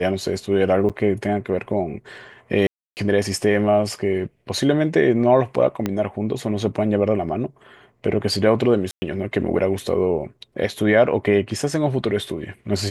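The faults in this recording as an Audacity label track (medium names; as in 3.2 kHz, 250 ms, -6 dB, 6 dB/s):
0.890000	0.900000	dropout 7.2 ms
2.670000	2.970000	dropout 299 ms
5.860000	5.860000	pop -9 dBFS
8.910000	9.020000	dropout 110 ms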